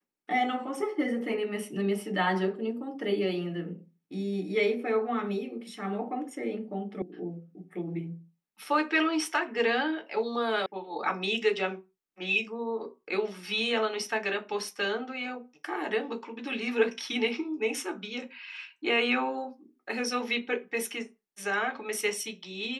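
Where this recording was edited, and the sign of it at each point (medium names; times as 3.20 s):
7.02 s: sound stops dead
10.66 s: sound stops dead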